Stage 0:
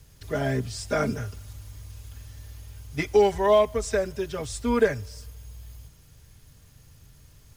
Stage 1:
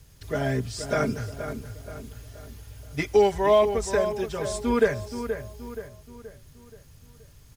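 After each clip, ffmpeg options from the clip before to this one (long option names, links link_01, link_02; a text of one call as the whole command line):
ffmpeg -i in.wav -filter_complex "[0:a]asplit=2[link_01][link_02];[link_02]adelay=476,lowpass=frequency=2600:poles=1,volume=-9dB,asplit=2[link_03][link_04];[link_04]adelay=476,lowpass=frequency=2600:poles=1,volume=0.46,asplit=2[link_05][link_06];[link_06]adelay=476,lowpass=frequency=2600:poles=1,volume=0.46,asplit=2[link_07][link_08];[link_08]adelay=476,lowpass=frequency=2600:poles=1,volume=0.46,asplit=2[link_09][link_10];[link_10]adelay=476,lowpass=frequency=2600:poles=1,volume=0.46[link_11];[link_01][link_03][link_05][link_07][link_09][link_11]amix=inputs=6:normalize=0" out.wav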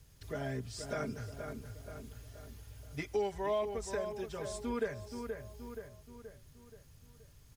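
ffmpeg -i in.wav -af "acompressor=threshold=-35dB:ratio=1.5,volume=-7.5dB" out.wav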